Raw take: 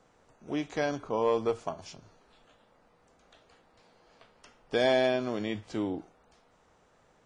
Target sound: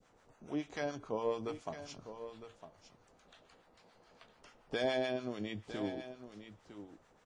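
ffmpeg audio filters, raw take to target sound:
-filter_complex "[0:a]asplit=2[a][b];[b]acompressor=threshold=-41dB:ratio=6,volume=0.5dB[c];[a][c]amix=inputs=2:normalize=0,acrossover=split=850[d][e];[d]aeval=exprs='val(0)*(1-0.7/2+0.7/2*cos(2*PI*7*n/s))':c=same[f];[e]aeval=exprs='val(0)*(1-0.7/2-0.7/2*cos(2*PI*7*n/s))':c=same[g];[f][g]amix=inputs=2:normalize=0,adynamicequalizer=threshold=0.00794:dfrequency=980:dqfactor=0.71:tfrequency=980:tqfactor=0.71:attack=5:release=100:ratio=0.375:range=2.5:mode=cutabove:tftype=bell,aecho=1:1:956:0.266,volume=-5.5dB"

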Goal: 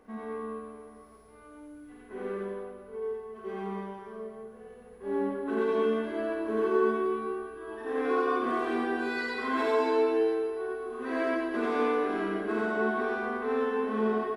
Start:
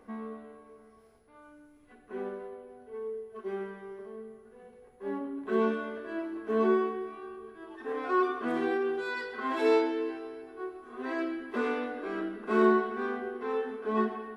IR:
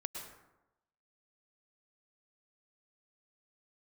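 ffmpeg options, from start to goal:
-filter_complex "[0:a]alimiter=limit=-23.5dB:level=0:latency=1:release=47,aecho=1:1:50|107.5|173.6|249.7|337.1:0.631|0.398|0.251|0.158|0.1,asplit=2[a][b];[1:a]atrim=start_sample=2205,adelay=88[c];[b][c]afir=irnorm=-1:irlink=0,volume=3.5dB[d];[a][d]amix=inputs=2:normalize=0,volume=-2dB"

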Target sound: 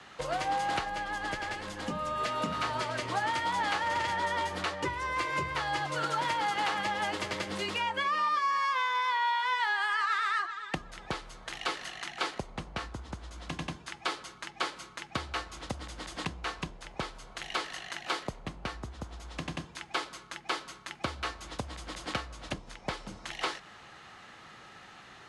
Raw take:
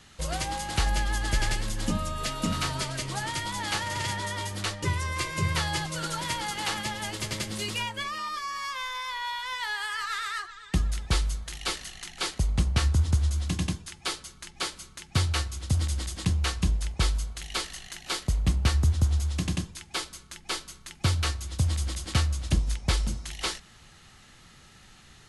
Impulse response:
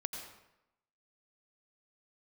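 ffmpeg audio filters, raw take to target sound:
-af "afreqshift=-15,acompressor=threshold=-32dB:ratio=6,bandpass=f=880:t=q:w=0.62:csg=0,volume=8.5dB"

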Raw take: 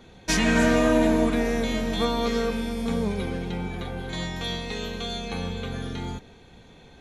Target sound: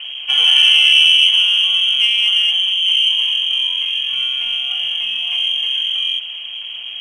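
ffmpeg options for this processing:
-af "aeval=exprs='val(0)+0.5*0.0211*sgn(val(0))':c=same,lowpass=f=2.8k:t=q:w=0.5098,lowpass=f=2.8k:t=q:w=0.6013,lowpass=f=2.8k:t=q:w=0.9,lowpass=f=2.8k:t=q:w=2.563,afreqshift=-3300,aexciter=amount=7.6:drive=6.7:freq=2.5k,volume=-6.5dB"

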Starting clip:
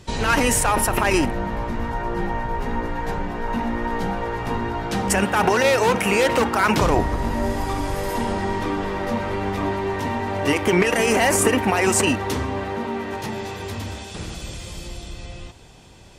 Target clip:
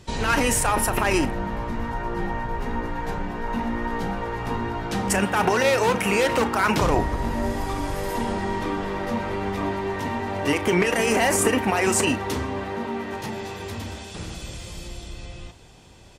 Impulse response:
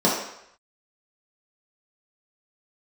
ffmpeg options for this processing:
-filter_complex "[0:a]asplit=2[a][b];[b]adelay=35,volume=-14dB[c];[a][c]amix=inputs=2:normalize=0,volume=-2.5dB"

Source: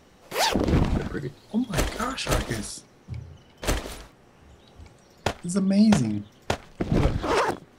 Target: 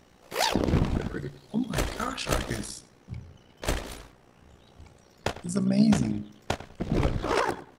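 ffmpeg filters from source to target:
-filter_complex "[0:a]tremolo=f=61:d=0.667,asplit=2[a][b];[b]adelay=100,lowpass=f=3.3k:p=1,volume=-15dB,asplit=2[c][d];[d]adelay=100,lowpass=f=3.3k:p=1,volume=0.27,asplit=2[e][f];[f]adelay=100,lowpass=f=3.3k:p=1,volume=0.27[g];[c][e][g]amix=inputs=3:normalize=0[h];[a][h]amix=inputs=2:normalize=0"

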